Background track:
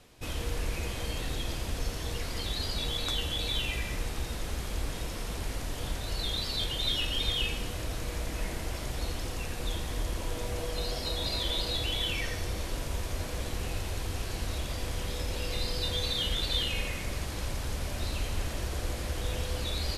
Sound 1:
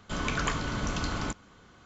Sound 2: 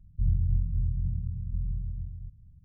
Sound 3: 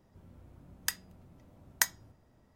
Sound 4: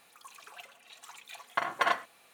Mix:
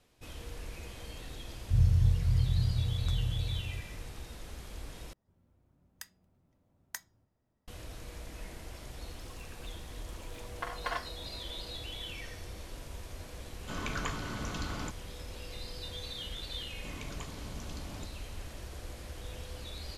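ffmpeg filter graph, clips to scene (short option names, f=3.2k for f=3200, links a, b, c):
-filter_complex "[1:a]asplit=2[a][b];[0:a]volume=-10.5dB[c];[2:a]equalizer=f=110:w=1.5:g=10[d];[4:a]asplit=2[e][f];[f]adelay=16,volume=-11dB[g];[e][g]amix=inputs=2:normalize=0[h];[b]equalizer=f=1.5k:w=1.7:g=-11.5[i];[c]asplit=2[j][k];[j]atrim=end=5.134[l];[3:a]atrim=end=2.55,asetpts=PTS-STARTPTS,volume=-14dB[m];[k]atrim=start=7.676[n];[d]atrim=end=2.64,asetpts=PTS-STARTPTS,volume=-4dB,afade=t=in:d=0.004:c=hsin,afade=t=out:st=2.636:d=0.004:c=hsin,adelay=1520[o];[h]atrim=end=2.33,asetpts=PTS-STARTPTS,volume=-9dB,afade=t=in:d=0.004:c=hsin,afade=t=out:st=2.326:d=0.004:c=hsin,adelay=9050[p];[a]atrim=end=1.85,asetpts=PTS-STARTPTS,volume=-6.5dB,afade=t=in:d=0.004:c=hsin,afade=t=out:st=1.846:d=0.004:c=hsin,adelay=13580[q];[i]atrim=end=1.85,asetpts=PTS-STARTPTS,volume=-12.5dB,afade=t=in:d=0.004:c=hsin,afade=t=out:st=1.846:d=0.004:c=hsin,adelay=16730[r];[l][m]acrossfade=d=0.004:c1=hsin:c2=hsin[s];[s][n]acrossfade=d=0.004:c1=hsin:c2=hsin[t];[t][o][p][q][r]amix=inputs=5:normalize=0"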